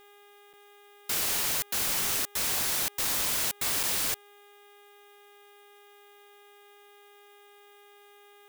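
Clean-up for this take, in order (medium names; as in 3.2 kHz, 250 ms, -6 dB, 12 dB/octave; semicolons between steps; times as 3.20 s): de-hum 408.2 Hz, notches 9; interpolate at 0.53/3.83 s, 6.5 ms; expander -48 dBFS, range -21 dB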